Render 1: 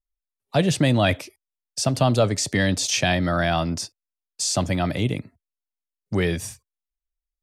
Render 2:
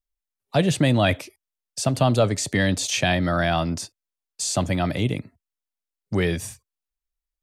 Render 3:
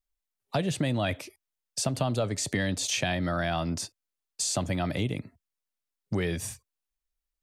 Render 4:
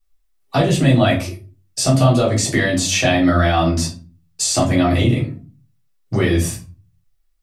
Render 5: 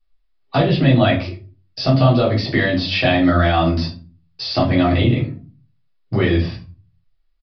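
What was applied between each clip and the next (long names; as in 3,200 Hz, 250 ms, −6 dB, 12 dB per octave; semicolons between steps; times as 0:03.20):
dynamic equaliser 5,300 Hz, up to −6 dB, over −43 dBFS, Q 3.6
downward compressor 3 to 1, threshold −27 dBFS, peak gain reduction 10 dB
rectangular room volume 190 cubic metres, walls furnished, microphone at 3.5 metres; level +4.5 dB
downsampling to 11,025 Hz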